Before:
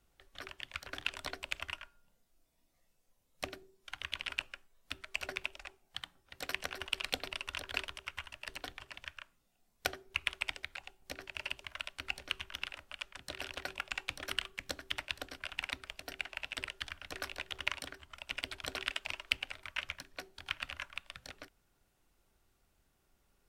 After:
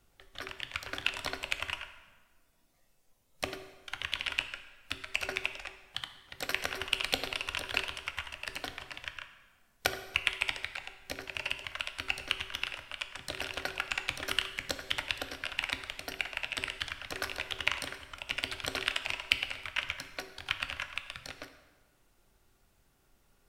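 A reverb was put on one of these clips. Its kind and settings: plate-style reverb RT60 1.4 s, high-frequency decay 0.75×, DRR 8.5 dB; gain +5 dB

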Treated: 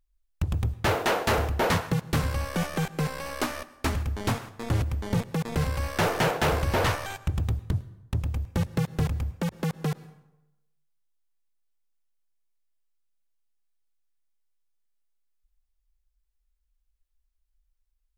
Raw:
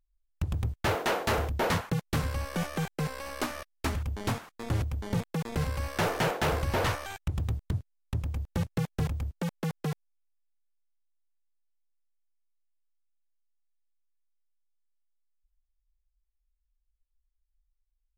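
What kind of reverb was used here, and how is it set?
plate-style reverb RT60 0.94 s, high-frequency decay 0.65×, pre-delay 95 ms, DRR 18 dB; gain +3.5 dB

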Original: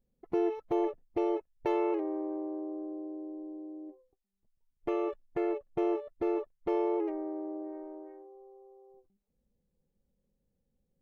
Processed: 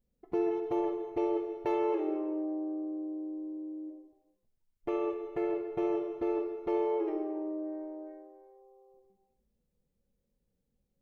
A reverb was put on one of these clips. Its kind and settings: non-linear reverb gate 0.47 s falling, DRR 3.5 dB; gain -2 dB

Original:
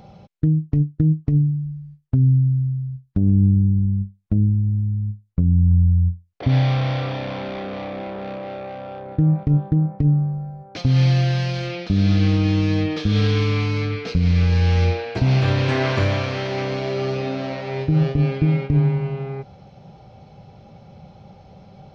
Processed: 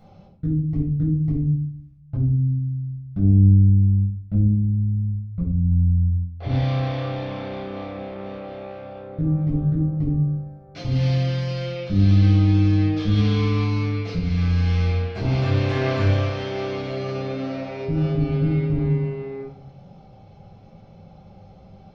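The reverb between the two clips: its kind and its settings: shoebox room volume 610 m³, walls furnished, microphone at 7 m; gain -13.5 dB

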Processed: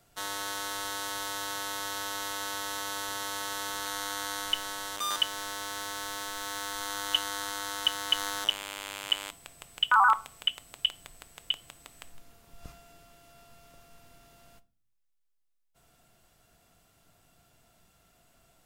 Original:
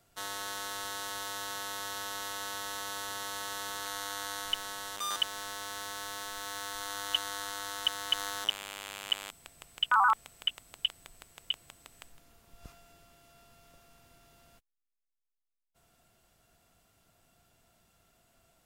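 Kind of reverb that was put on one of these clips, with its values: shoebox room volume 350 m³, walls furnished, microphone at 0.4 m; gain +3 dB

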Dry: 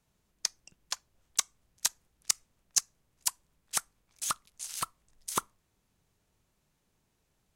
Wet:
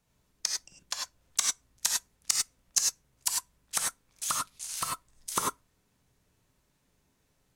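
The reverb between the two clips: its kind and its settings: non-linear reverb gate 0.12 s rising, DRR -1 dB

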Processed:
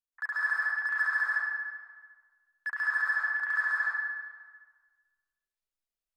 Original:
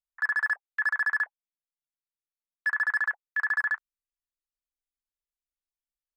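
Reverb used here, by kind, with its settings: digital reverb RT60 1.5 s, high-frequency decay 0.8×, pre-delay 85 ms, DRR -7 dB; gain -7.5 dB

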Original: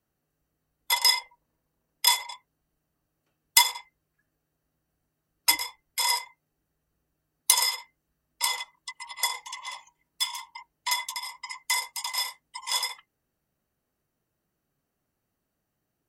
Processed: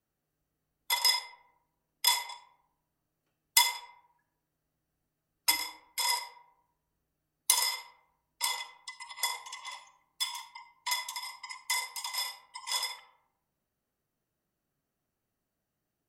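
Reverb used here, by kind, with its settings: digital reverb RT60 0.82 s, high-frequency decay 0.45×, pre-delay 5 ms, DRR 8.5 dB; gain -5 dB

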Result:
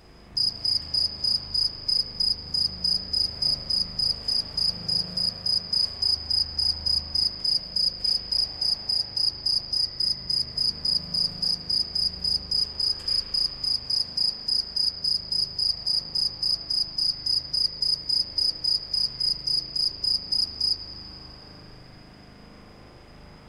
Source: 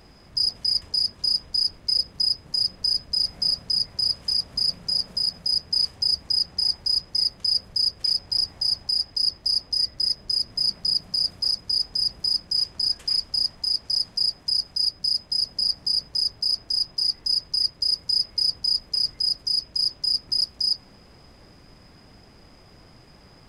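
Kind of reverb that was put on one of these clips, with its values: spring tank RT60 3.4 s, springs 39 ms, chirp 75 ms, DRR -3.5 dB; gain -1.5 dB

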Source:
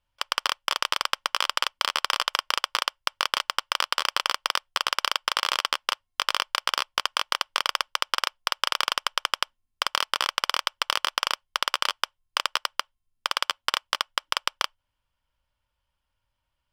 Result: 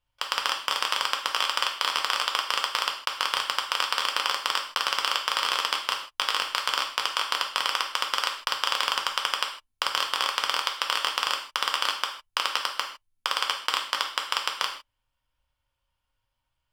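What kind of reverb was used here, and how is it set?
non-linear reverb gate 0.18 s falling, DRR 1.5 dB; gain -2.5 dB

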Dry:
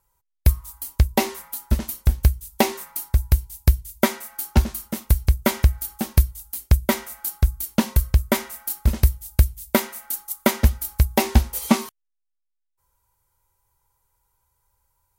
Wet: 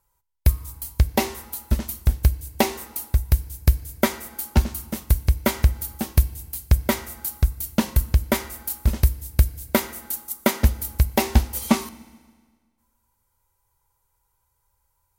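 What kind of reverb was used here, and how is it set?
FDN reverb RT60 1.6 s, low-frequency decay 1×, high-frequency decay 0.9×, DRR 16 dB; gain -1 dB

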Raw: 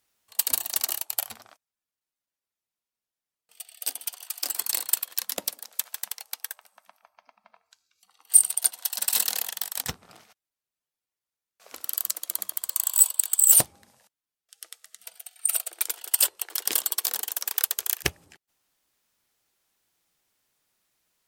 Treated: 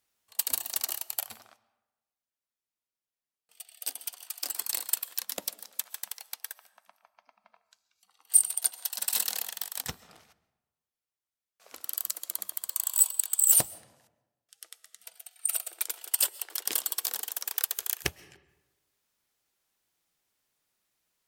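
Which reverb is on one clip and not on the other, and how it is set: digital reverb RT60 1.1 s, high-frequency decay 0.6×, pre-delay 90 ms, DRR 19.5 dB; gain -4.5 dB

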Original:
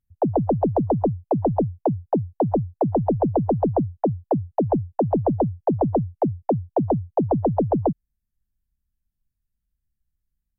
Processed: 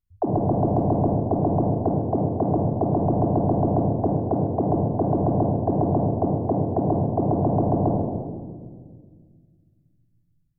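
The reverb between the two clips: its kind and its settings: shoebox room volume 2200 m³, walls mixed, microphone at 3.2 m; gain -6 dB

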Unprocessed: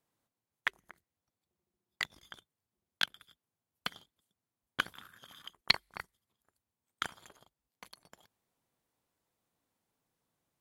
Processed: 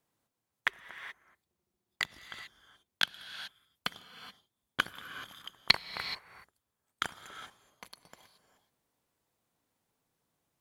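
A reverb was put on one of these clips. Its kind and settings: non-linear reverb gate 0.45 s rising, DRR 10.5 dB; gain +2.5 dB

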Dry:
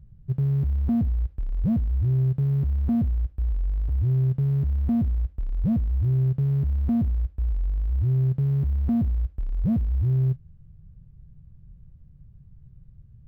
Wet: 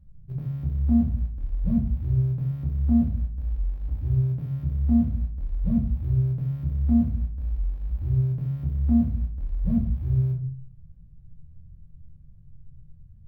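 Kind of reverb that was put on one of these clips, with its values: shoebox room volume 290 m³, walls furnished, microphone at 2.2 m; gain -7.5 dB

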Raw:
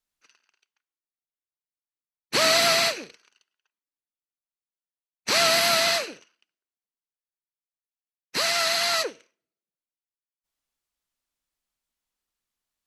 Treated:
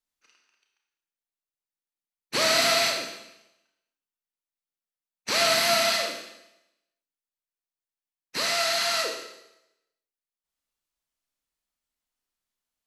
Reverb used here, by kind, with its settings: Schroeder reverb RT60 0.88 s, combs from 25 ms, DRR 1.5 dB; gain -4 dB

